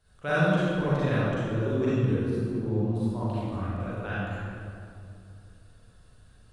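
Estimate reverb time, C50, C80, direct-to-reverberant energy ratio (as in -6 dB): 2.5 s, -7.5 dB, -3.5 dB, -11.5 dB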